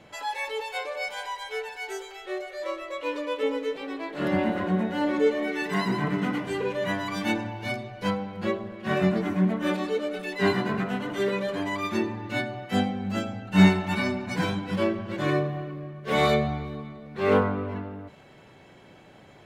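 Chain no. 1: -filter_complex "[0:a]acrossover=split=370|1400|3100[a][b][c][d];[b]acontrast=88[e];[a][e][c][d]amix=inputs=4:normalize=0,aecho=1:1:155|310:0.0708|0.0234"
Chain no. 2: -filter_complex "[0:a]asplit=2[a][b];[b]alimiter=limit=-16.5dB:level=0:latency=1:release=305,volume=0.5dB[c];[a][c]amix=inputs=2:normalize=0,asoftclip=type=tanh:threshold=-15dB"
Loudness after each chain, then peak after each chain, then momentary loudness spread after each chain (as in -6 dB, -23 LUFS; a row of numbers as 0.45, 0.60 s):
-24.0, -24.5 LUFS; -3.0, -15.0 dBFS; 11, 7 LU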